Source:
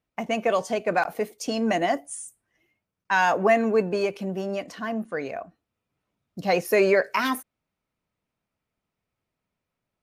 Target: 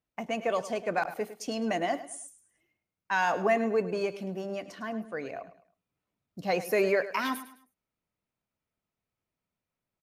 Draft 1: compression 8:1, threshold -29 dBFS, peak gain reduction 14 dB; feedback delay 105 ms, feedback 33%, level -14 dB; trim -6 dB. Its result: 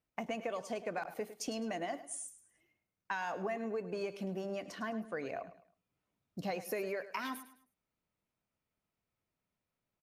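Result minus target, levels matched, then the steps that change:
compression: peak gain reduction +14 dB
remove: compression 8:1, threshold -29 dBFS, peak gain reduction 14 dB

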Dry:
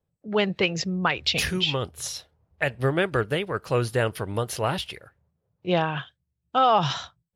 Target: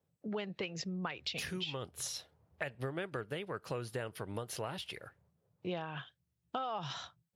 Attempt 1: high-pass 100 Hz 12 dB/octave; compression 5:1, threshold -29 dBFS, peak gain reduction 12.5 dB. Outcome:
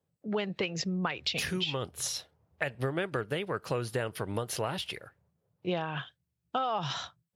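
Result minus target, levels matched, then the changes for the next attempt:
compression: peak gain reduction -7 dB
change: compression 5:1, threshold -38 dBFS, peak gain reduction 20 dB

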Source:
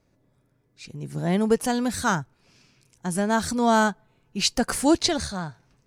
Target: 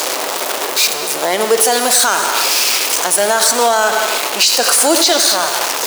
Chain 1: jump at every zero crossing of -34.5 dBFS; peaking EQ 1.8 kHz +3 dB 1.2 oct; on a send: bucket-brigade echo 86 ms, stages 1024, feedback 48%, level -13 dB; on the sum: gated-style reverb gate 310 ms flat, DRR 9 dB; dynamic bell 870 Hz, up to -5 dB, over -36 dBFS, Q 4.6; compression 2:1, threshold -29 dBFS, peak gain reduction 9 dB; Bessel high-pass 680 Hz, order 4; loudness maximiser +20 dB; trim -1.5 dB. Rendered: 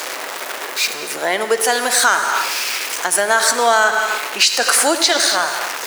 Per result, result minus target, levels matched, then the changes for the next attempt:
compression: peak gain reduction +9 dB; jump at every zero crossing: distortion -9 dB; 2 kHz band +5.0 dB
remove: compression 2:1, threshold -29 dBFS, peak gain reduction 9 dB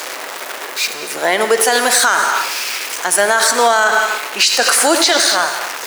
jump at every zero crossing: distortion -9 dB; 2 kHz band +4.5 dB
change: jump at every zero crossing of -24.5 dBFS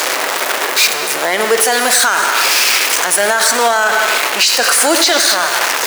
2 kHz band +4.5 dB
change: peaking EQ 1.8 kHz -5.5 dB 1.2 oct

